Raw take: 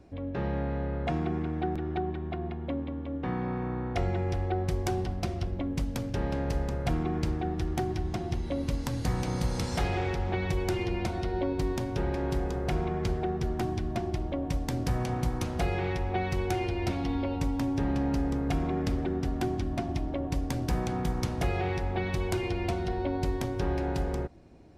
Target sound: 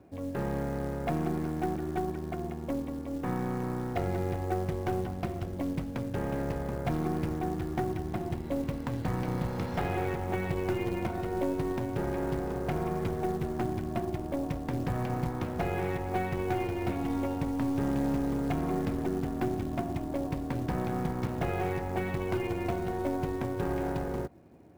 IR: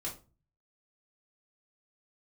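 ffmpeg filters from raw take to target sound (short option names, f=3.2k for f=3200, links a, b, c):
-af "highpass=100,lowpass=2.2k,aeval=exprs='0.133*(cos(1*acos(clip(val(0)/0.133,-1,1)))-cos(1*PI/2))+0.0075*(cos(6*acos(clip(val(0)/0.133,-1,1)))-cos(6*PI/2))':c=same,acrusher=bits=6:mode=log:mix=0:aa=0.000001"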